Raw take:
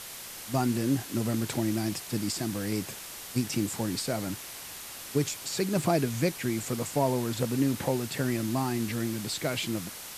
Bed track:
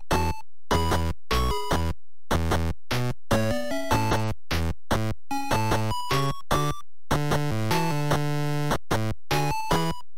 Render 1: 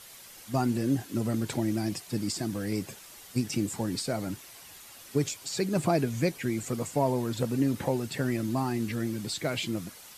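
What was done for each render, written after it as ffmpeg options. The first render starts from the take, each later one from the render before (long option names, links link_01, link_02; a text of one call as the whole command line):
ffmpeg -i in.wav -af "afftdn=noise_reduction=9:noise_floor=-42" out.wav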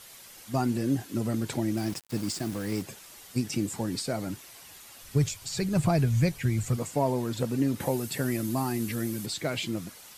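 ffmpeg -i in.wav -filter_complex "[0:a]asettb=1/sr,asplit=3[link_01][link_02][link_03];[link_01]atrim=end=1.774[link_04];[link_02]atrim=start=1.77:end=2.82,asetpts=PTS-STARTPTS,afade=type=in:duration=0.004:curve=qsin,afade=type=out:start_time=1.046:duration=0.004:curve=qsin,aeval=exprs='val(0)*gte(abs(val(0)),0.0119)':channel_layout=same[link_05];[link_03]atrim=start=2.816[link_06];[link_04][link_05]acrossfade=duration=0.004:curve1=hsin:curve2=qsin[link_07];[link_07][link_06]acrossfade=duration=0.004:curve1=qsin:curve2=hsin,asplit=3[link_08][link_09][link_10];[link_08]afade=type=out:start_time=5.02:duration=0.02[link_11];[link_09]asubboost=boost=9.5:cutoff=98,afade=type=in:start_time=5.02:duration=0.02,afade=type=out:start_time=6.76:duration=0.02[link_12];[link_10]afade=type=in:start_time=6.76:duration=0.02[link_13];[link_11][link_12][link_13]amix=inputs=3:normalize=0,asettb=1/sr,asplit=3[link_14][link_15][link_16];[link_14]atrim=end=7.804[link_17];[link_15]atrim=start=7.8:end=9.26,asetpts=PTS-STARTPTS,afade=type=in:duration=0.004:curve=qsin,afade=type=out:start_time=1.456:duration=0.004:curve=qsin,equalizer=frequency=12000:width_type=o:width=1.1:gain=10.5[link_18];[link_16]atrim=start=9.256[link_19];[link_17][link_18]acrossfade=duration=0.004:curve1=hsin:curve2=qsin[link_20];[link_20][link_19]acrossfade=duration=0.004:curve1=qsin:curve2=hsin" out.wav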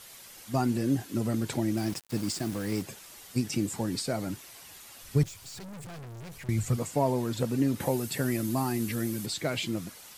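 ffmpeg -i in.wav -filter_complex "[0:a]asettb=1/sr,asplit=3[link_01][link_02][link_03];[link_01]atrim=end=5.234[link_04];[link_02]atrim=start=5.23:end=6.49,asetpts=PTS-STARTPTS,afade=type=in:duration=0.004:curve=qsin,afade=type=out:start_time=1.256:duration=0.004:curve=qsin,aeval=exprs='(tanh(126*val(0)+0.3)-tanh(0.3))/126':channel_layout=same[link_05];[link_03]atrim=start=6.486[link_06];[link_04][link_05]acrossfade=duration=0.004:curve1=hsin:curve2=qsin[link_07];[link_07][link_06]acrossfade=duration=0.004:curve1=qsin:curve2=hsin" out.wav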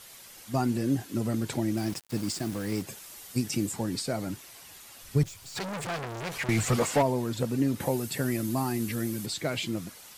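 ffmpeg -i in.wav -filter_complex "[0:a]asettb=1/sr,asplit=3[link_01][link_02][link_03];[link_01]atrim=end=2.874[link_04];[link_02]atrim=start=2.87:end=3.72,asetpts=PTS-STARTPTS,afade=type=in:duration=0.004:curve=qsin,afade=type=out:start_time=0.846:duration=0.004:curve=qsin,highshelf=frequency=7400:gain=5.5[link_05];[link_03]atrim=start=3.716[link_06];[link_04][link_05]acrossfade=duration=0.004:curve1=hsin:curve2=qsin[link_07];[link_07][link_06]acrossfade=duration=0.004:curve1=qsin:curve2=hsin,asplit=3[link_08][link_09][link_10];[link_08]afade=type=out:start_time=5.55:duration=0.02[link_11];[link_09]asplit=2[link_12][link_13];[link_13]highpass=frequency=720:poles=1,volume=23dB,asoftclip=type=tanh:threshold=-14dB[link_14];[link_12][link_14]amix=inputs=2:normalize=0,lowpass=frequency=3100:poles=1,volume=-6dB,afade=type=in:start_time=5.55:duration=0.02,afade=type=out:start_time=7.01:duration=0.02[link_15];[link_10]afade=type=in:start_time=7.01:duration=0.02[link_16];[link_11][link_15][link_16]amix=inputs=3:normalize=0" out.wav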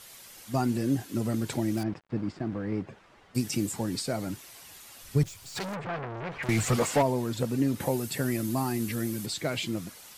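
ffmpeg -i in.wav -filter_complex "[0:a]asettb=1/sr,asplit=3[link_01][link_02][link_03];[link_01]atrim=end=1.834[link_04];[link_02]atrim=start=1.83:end=3.35,asetpts=PTS-STARTPTS,afade=type=in:duration=0.004:curve=qsin,afade=type=out:start_time=1.516:duration=0.004:curve=qsin,lowpass=1700[link_05];[link_03]atrim=start=3.346[link_06];[link_04][link_05]acrossfade=duration=0.004:curve1=hsin:curve2=qsin[link_07];[link_07][link_06]acrossfade=duration=0.004:curve1=qsin:curve2=hsin,asplit=3[link_08][link_09][link_10];[link_08]afade=type=out:start_time=5.74:duration=0.02[link_11];[link_09]lowpass=2100,afade=type=in:start_time=5.74:duration=0.02,afade=type=out:start_time=6.42:duration=0.02[link_12];[link_10]afade=type=in:start_time=6.42:duration=0.02[link_13];[link_11][link_12][link_13]amix=inputs=3:normalize=0" out.wav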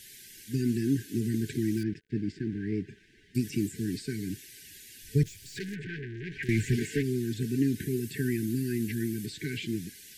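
ffmpeg -i in.wav -filter_complex "[0:a]afftfilt=real='re*(1-between(b*sr/4096,450,1500))':imag='im*(1-between(b*sr/4096,450,1500))':win_size=4096:overlap=0.75,acrossover=split=2600[link_01][link_02];[link_02]acompressor=threshold=-43dB:ratio=4:attack=1:release=60[link_03];[link_01][link_03]amix=inputs=2:normalize=0" out.wav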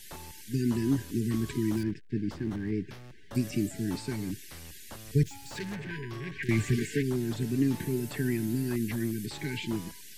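ffmpeg -i in.wav -i bed.wav -filter_complex "[1:a]volume=-22dB[link_01];[0:a][link_01]amix=inputs=2:normalize=0" out.wav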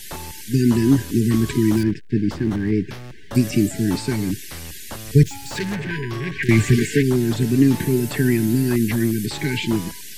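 ffmpeg -i in.wav -af "volume=11.5dB" out.wav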